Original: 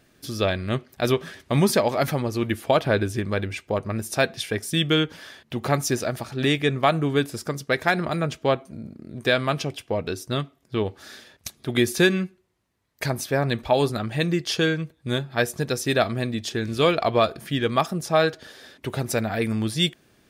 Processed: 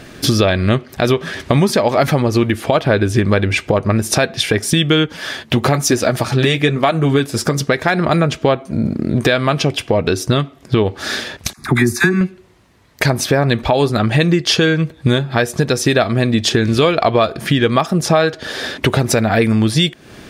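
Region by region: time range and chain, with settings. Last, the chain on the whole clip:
0:05.06–0:07.58: high-shelf EQ 6,300 Hz +5 dB + flanger 1.1 Hz, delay 2.6 ms, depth 7.4 ms, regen −42%
0:11.53–0:12.21: phaser with its sweep stopped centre 1,300 Hz, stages 4 + all-pass dispersion lows, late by 48 ms, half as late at 800 Hz
whole clip: high-shelf EQ 10,000 Hz −12 dB; downward compressor 6 to 1, threshold −34 dBFS; boost into a limiter +24 dB; level −1 dB

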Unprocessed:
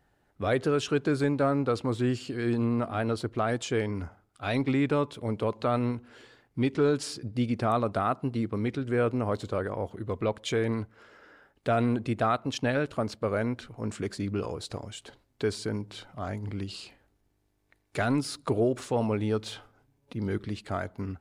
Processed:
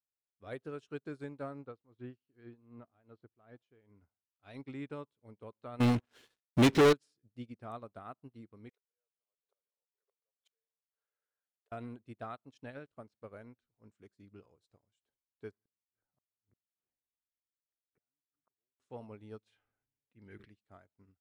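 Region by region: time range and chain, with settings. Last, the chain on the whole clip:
0:01.66–0:04.02: amplitude tremolo 2.6 Hz, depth 59% + high-frequency loss of the air 190 metres
0:05.80–0:06.93: parametric band 3,900 Hz +7 dB 1.8 octaves + leveller curve on the samples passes 5
0:08.69–0:11.72: variable-slope delta modulation 64 kbit/s + gate with flip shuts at −24 dBFS, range −28 dB + linear-phase brick-wall high-pass 390 Hz
0:15.51–0:18.80: Butterworth low-pass 1,900 Hz + gate with flip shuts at −28 dBFS, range −36 dB
0:19.47–0:20.52: flat-topped bell 2,100 Hz +9 dB 1 octave + level that may fall only so fast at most 46 dB per second
whole clip: notch filter 4,600 Hz, Q 22; expander for the loud parts 2.5 to 1, over −41 dBFS; level −4.5 dB

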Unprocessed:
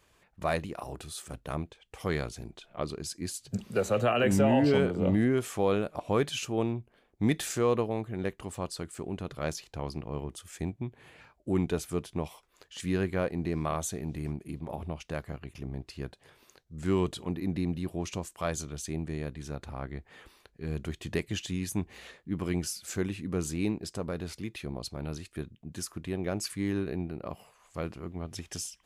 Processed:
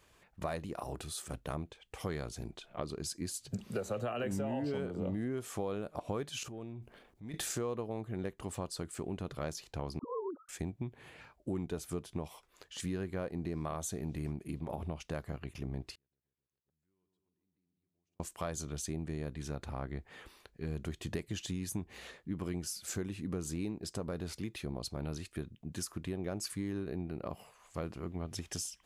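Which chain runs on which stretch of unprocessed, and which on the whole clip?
0:06.43–0:07.34: downward compressor 8 to 1, threshold −40 dBFS + transient designer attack −9 dB, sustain +7 dB
0:09.99–0:10.49: three sine waves on the formant tracks + Chebyshev low-pass with heavy ripple 1,500 Hz, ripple 3 dB + all-pass dispersion lows, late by 47 ms, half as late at 450 Hz
0:15.95–0:18.20: feedback echo with a low-pass in the loop 133 ms, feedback 64%, low-pass 1,400 Hz, level −7 dB + downward compressor 2.5 to 1, threshold −46 dBFS + gate with flip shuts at −49 dBFS, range −41 dB
whole clip: dynamic equaliser 2,400 Hz, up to −4 dB, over −50 dBFS, Q 1.2; downward compressor 5 to 1, threshold −34 dBFS

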